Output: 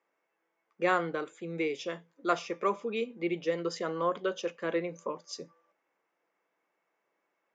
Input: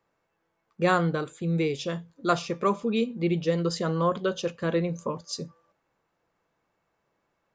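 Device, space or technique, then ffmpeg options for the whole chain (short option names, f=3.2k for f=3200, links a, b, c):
television speaker: -af "highpass=f=230:w=0.5412,highpass=f=230:w=1.3066,equalizer=f=230:t=q:w=4:g=-6,equalizer=f=2.1k:t=q:w=4:g=6,equalizer=f=4.2k:t=q:w=4:g=-8,lowpass=f=6.9k:w=0.5412,lowpass=f=6.9k:w=1.3066,volume=-4dB"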